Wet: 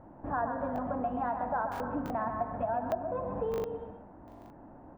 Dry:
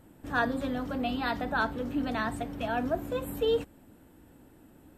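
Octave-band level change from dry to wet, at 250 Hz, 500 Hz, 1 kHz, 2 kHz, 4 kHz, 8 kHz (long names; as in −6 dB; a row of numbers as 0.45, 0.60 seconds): −5.5 dB, −2.0 dB, +1.5 dB, −10.5 dB, below −15 dB, below −10 dB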